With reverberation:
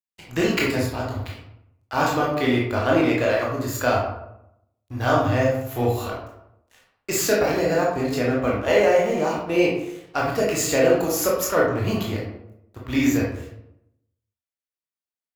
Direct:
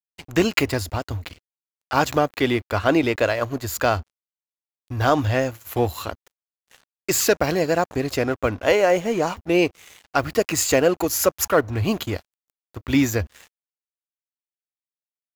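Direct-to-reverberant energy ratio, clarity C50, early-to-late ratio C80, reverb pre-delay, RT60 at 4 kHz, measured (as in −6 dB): −4.5 dB, 2.0 dB, 6.0 dB, 18 ms, 0.45 s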